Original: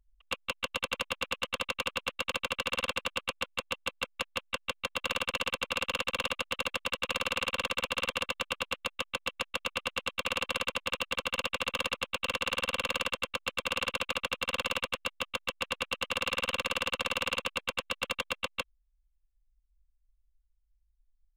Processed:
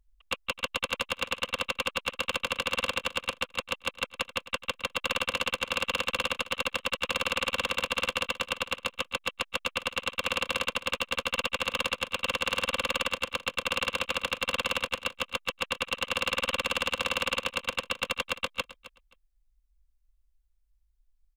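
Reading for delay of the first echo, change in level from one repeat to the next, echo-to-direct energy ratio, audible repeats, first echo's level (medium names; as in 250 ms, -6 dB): 264 ms, -14.5 dB, -16.5 dB, 2, -16.5 dB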